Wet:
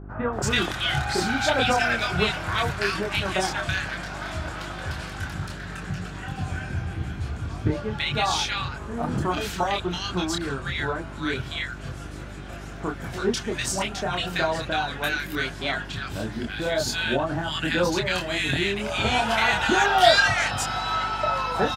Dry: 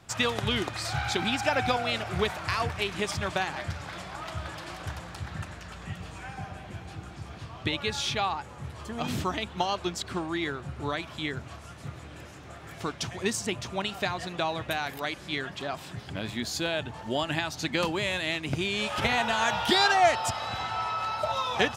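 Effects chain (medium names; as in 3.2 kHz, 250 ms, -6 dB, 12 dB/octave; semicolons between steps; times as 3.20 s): 6.25–7.71 s: bass shelf 170 Hz +10.5 dB; chorus voices 4, 0.15 Hz, delay 26 ms, depth 4.2 ms; peaking EQ 1.5 kHz +8.5 dB 0.3 oct; bands offset in time lows, highs 330 ms, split 1.3 kHz; mains buzz 50 Hz, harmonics 8, -47 dBFS -5 dB/octave; trim +7.5 dB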